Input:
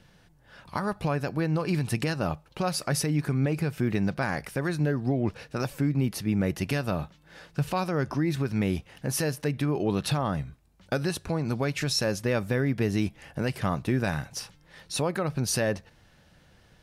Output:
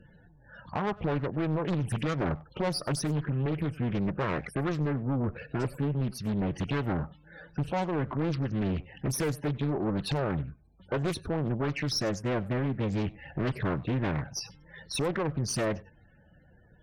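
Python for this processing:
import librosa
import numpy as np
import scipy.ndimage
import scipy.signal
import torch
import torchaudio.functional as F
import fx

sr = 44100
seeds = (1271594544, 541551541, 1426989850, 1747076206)

y = fx.spec_topn(x, sr, count=32)
y = fx.rider(y, sr, range_db=10, speed_s=0.5)
y = fx.tube_stage(y, sr, drive_db=26.0, bias=0.35)
y = y + 10.0 ** (-22.5 / 20.0) * np.pad(y, (int(97 * sr / 1000.0), 0))[:len(y)]
y = fx.doppler_dist(y, sr, depth_ms=0.81)
y = y * librosa.db_to_amplitude(2.5)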